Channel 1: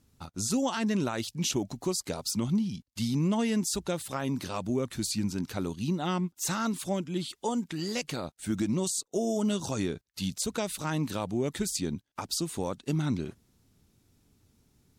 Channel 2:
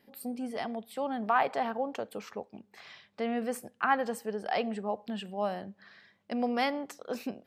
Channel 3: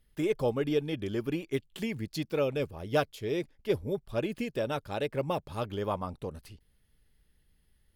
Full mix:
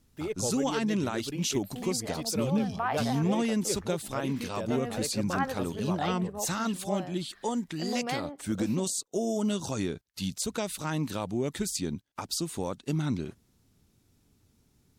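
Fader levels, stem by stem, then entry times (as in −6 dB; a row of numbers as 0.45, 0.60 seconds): −0.5, −4.5, −5.5 decibels; 0.00, 1.50, 0.00 seconds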